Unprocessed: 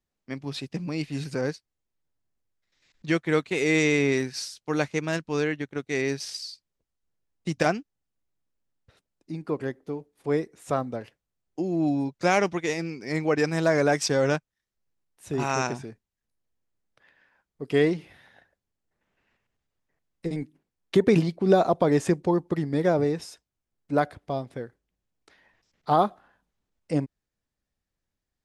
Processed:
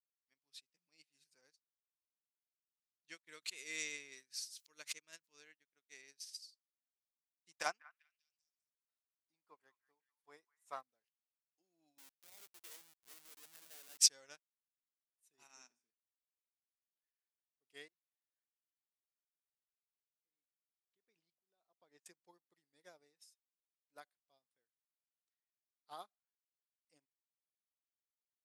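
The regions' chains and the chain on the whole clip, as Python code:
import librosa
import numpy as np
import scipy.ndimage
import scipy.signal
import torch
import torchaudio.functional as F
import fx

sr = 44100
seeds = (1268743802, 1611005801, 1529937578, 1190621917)

y = fx.chain(x, sr, fx.notch(hz=780.0, q=5.1),
    fx.pre_swell(db_per_s=72.0), at=(3.27, 5.4))
y = fx.chain(y, sr, fx.peak_eq(hz=980.0, db=11.5, octaves=1.2),
    fx.echo_stepped(ms=197, hz=1500.0, octaves=0.7, feedback_pct=70, wet_db=-5.0), at=(7.51, 10.83))
y = fx.chain(y, sr, fx.low_shelf(hz=150.0, db=-12.0),
    fx.over_compress(threshold_db=-28.0, ratio=-1.0),
    fx.schmitt(flips_db=-30.5), at=(11.98, 13.99))
y = fx.chain(y, sr, fx.peak_eq(hz=250.0, db=14.0, octaves=0.35),
    fx.comb_fb(f0_hz=58.0, decay_s=0.49, harmonics='all', damping=0.0, mix_pct=60), at=(15.47, 15.89))
y = fx.chain(y, sr, fx.lowpass(hz=5000.0, slope=12),
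    fx.peak_eq(hz=3200.0, db=-3.0, octaves=1.8),
    fx.tremolo_decay(direction='swelling', hz=1.7, depth_db=19), at=(17.88, 22.06))
y = np.diff(y, prepend=0.0)
y = fx.upward_expand(y, sr, threshold_db=-52.0, expansion=2.5)
y = y * 10.0 ** (4.5 / 20.0)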